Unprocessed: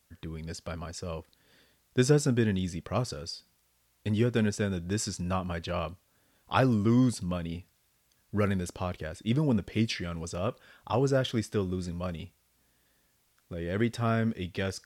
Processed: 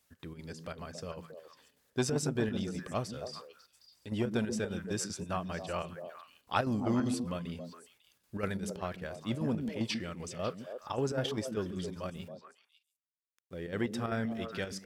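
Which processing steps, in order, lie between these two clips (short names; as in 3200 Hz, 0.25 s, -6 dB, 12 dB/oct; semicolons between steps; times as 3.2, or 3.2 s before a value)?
low shelf 130 Hz -9 dB; 12.15–13.53 sample gate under -54.5 dBFS; chopper 5.1 Hz, depth 60%, duty 70%; delay with a stepping band-pass 0.137 s, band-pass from 200 Hz, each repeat 1.4 oct, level -3 dB; core saturation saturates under 650 Hz; gain -2.5 dB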